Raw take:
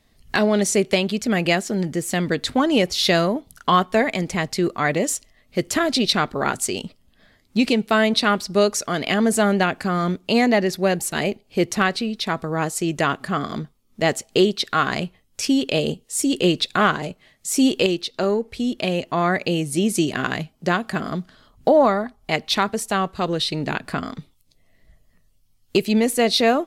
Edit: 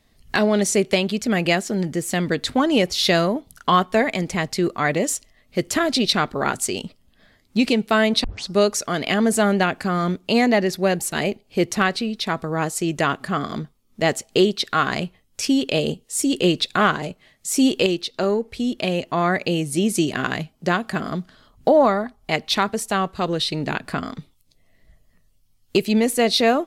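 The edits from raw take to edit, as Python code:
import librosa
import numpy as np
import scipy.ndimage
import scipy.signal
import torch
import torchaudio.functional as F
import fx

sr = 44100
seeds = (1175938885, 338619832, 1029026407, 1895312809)

y = fx.edit(x, sr, fx.tape_start(start_s=8.24, length_s=0.25), tone=tone)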